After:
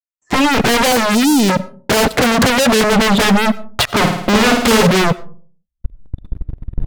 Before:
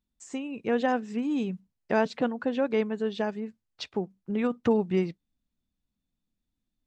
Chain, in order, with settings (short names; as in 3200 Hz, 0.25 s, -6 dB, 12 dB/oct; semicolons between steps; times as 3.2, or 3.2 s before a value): recorder AGC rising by 34 dB/s; spectral noise reduction 21 dB; gate -52 dBFS, range -29 dB; LPF 1300 Hz 12 dB/oct; 0.92–1.5 sample leveller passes 2; 2.19–2.84 low shelf 280 Hz +8.5 dB; sample leveller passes 5; sine folder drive 9 dB, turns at -13 dBFS; 3.88–4.87 flutter echo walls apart 9.2 m, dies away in 0.68 s; on a send at -19.5 dB: reverb RT60 0.45 s, pre-delay 55 ms; on the sum: gain +6 dB